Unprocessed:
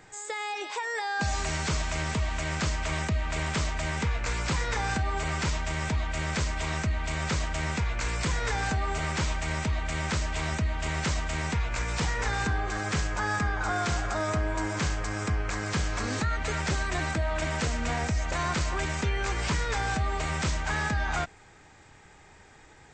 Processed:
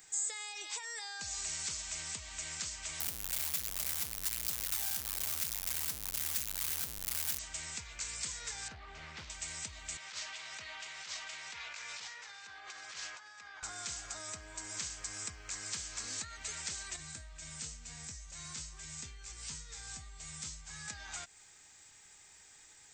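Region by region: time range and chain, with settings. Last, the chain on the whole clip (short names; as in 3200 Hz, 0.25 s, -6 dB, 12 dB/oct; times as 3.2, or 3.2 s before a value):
3–7.39 phaser 1.3 Hz, delay 1.5 ms, feedback 37% + Schmitt trigger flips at -37.5 dBFS
8.68–9.3 air absorption 270 m + Doppler distortion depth 0.22 ms
9.97–13.63 HPF 110 Hz + three-band isolator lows -15 dB, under 520 Hz, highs -24 dB, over 5100 Hz + negative-ratio compressor -39 dBFS
16.96–20.88 tone controls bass +9 dB, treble +3 dB + resonator 51 Hz, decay 0.33 s, harmonics odd, mix 80%
whole clip: high shelf 4100 Hz +8 dB; compressor, threshold -31 dBFS; pre-emphasis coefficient 0.9; gain +1.5 dB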